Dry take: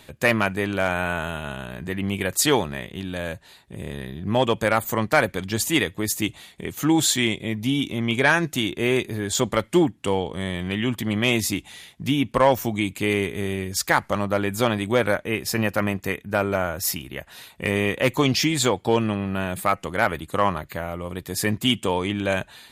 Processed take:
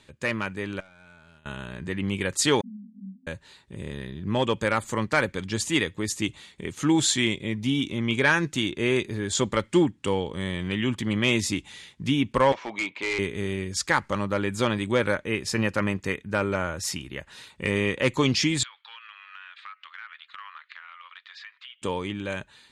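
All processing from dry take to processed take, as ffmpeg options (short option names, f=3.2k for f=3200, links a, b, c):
-filter_complex "[0:a]asettb=1/sr,asplit=3[a][b][c];[a]atrim=end=0.804[d];[b]atrim=start=0.8:end=1.46,asetpts=PTS-STARTPTS,afade=t=in:d=0.004:c=qsin,afade=t=out:st=0.656:d=0.004:c=qsin,agate=range=-33dB:threshold=-19dB:ratio=3:release=100:detection=peak,acompressor=threshold=-39dB:ratio=4:attack=3.2:release=140:knee=1:detection=peak,aeval=exprs='clip(val(0),-1,0.0112)':c=same[e];[c]atrim=start=1.456[f];[d][e]acrossfade=d=0.004:c1=hsin:c2=qsin[g];[g][f]acrossfade=d=0.004:c1=qsin:c2=hsin,asettb=1/sr,asplit=3[h][i][j];[h]atrim=end=2.614[k];[i]atrim=start=2.61:end=3.27,asetpts=PTS-STARTPTS,afade=t=in:d=0.004:c=qsin,afade=t=out:st=0.656:d=0.004:c=qsin,asuperpass=centerf=220:order=20:qfactor=3.3,agate=range=-33dB:threshold=-51dB:ratio=3:release=100:detection=peak[l];[j]atrim=start=3.266[m];[k][l]acrossfade=d=0.004:c1=hsin:c2=qsin[n];[n][m]acrossfade=d=0.004:c1=qsin:c2=hsin,asettb=1/sr,asplit=3[o][p][q];[o]atrim=end=12.524[r];[p]atrim=start=12.52:end=13.19,asetpts=PTS-STARTPTS,afade=t=in:d=0.004:c=qsin,afade=t=out:st=0.666:d=0.004:c=qsin,highpass=440,equalizer=f=660:t=q:w=4:g=7,equalizer=f=960:t=q:w=4:g=9,equalizer=f=2.2k:t=q:w=4:g=6,lowpass=f=4k:w=0.5412,lowpass=f=4k:w=1.3066,asoftclip=type=hard:threshold=-21dB[s];[q]atrim=start=13.186[t];[r][s]acrossfade=d=0.004:c1=hsin:c2=qsin[u];[u][t]acrossfade=d=0.004:c1=qsin:c2=hsin,asettb=1/sr,asplit=3[v][w][x];[v]atrim=end=18.634[y];[w]atrim=start=18.63:end=21.82,asetpts=PTS-STARTPTS,afade=t=in:d=0.004:c=qsin,afade=t=out:st=3.186:d=0.004:c=qsin,asuperpass=centerf=2200:order=8:qfactor=0.77,acompressor=threshold=-39dB:ratio=5:attack=3.2:release=140:knee=1:detection=peak[z];[x]atrim=start=21.816[aa];[y][z]acrossfade=d=0.004:c1=hsin:c2=qsin[ab];[ab][aa]acrossfade=d=0.004:c1=qsin:c2=hsin,lowpass=f=8.9k:w=0.5412,lowpass=f=8.9k:w=1.3066,equalizer=f=700:t=o:w=0.21:g=-13.5,dynaudnorm=f=110:g=21:m=8dB,volume=-7.5dB"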